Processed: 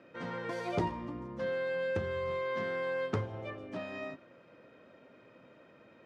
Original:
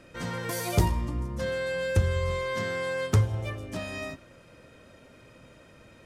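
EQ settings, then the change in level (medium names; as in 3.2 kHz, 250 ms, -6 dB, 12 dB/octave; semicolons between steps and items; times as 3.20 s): band-pass 210–3900 Hz; treble shelf 2.7 kHz -9 dB; -2.5 dB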